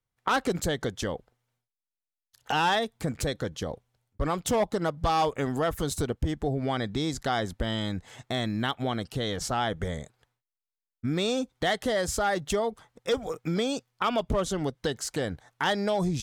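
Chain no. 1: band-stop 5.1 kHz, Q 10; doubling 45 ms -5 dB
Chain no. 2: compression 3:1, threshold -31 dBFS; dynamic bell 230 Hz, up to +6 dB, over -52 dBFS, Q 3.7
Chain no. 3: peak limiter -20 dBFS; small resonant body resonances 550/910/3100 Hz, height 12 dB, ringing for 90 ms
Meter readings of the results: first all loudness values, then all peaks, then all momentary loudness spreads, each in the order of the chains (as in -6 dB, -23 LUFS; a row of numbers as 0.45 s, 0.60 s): -28.0 LUFS, -34.0 LUFS, -29.0 LUFS; -13.0 dBFS, -17.0 dBFS, -11.0 dBFS; 8 LU, 5 LU, 7 LU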